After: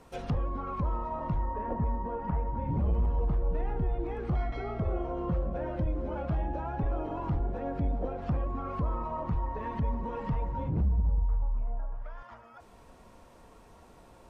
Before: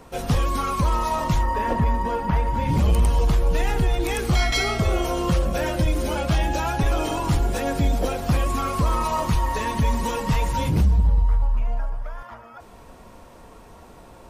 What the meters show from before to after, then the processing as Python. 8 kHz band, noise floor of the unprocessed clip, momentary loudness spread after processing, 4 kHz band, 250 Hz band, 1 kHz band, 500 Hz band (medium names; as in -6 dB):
under -30 dB, -46 dBFS, 6 LU, under -25 dB, -9.0 dB, -11.5 dB, -9.5 dB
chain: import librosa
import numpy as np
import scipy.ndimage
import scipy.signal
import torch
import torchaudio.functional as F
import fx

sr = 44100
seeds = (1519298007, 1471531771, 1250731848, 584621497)

y = fx.env_lowpass_down(x, sr, base_hz=1000.0, full_db=-20.0)
y = F.gain(torch.from_numpy(y), -9.0).numpy()